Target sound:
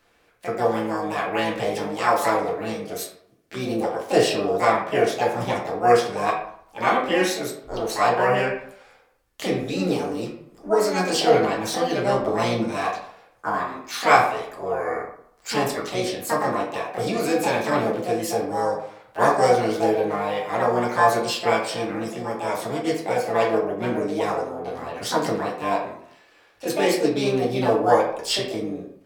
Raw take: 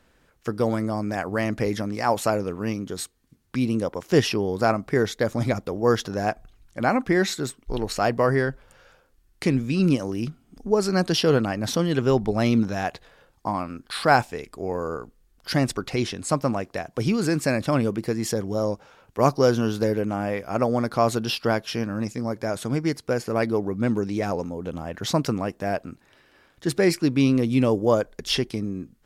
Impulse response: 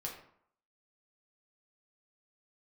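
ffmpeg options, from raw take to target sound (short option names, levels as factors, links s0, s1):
-filter_complex "[0:a]bass=f=250:g=-11,treble=f=4000:g=-1,asplit=2[s0][s1];[s1]asetrate=66075,aresample=44100,atempo=0.66742,volume=0.794[s2];[s0][s2]amix=inputs=2:normalize=0[s3];[1:a]atrim=start_sample=2205,asetrate=42777,aresample=44100[s4];[s3][s4]afir=irnorm=-1:irlink=0,volume=1.12"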